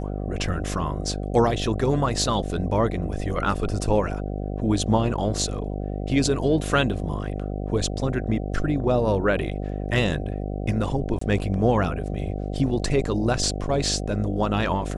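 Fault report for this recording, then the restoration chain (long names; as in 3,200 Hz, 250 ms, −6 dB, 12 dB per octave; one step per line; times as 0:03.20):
mains buzz 50 Hz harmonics 15 −29 dBFS
0:11.19–0:11.21: drop-out 24 ms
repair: hum removal 50 Hz, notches 15
repair the gap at 0:11.19, 24 ms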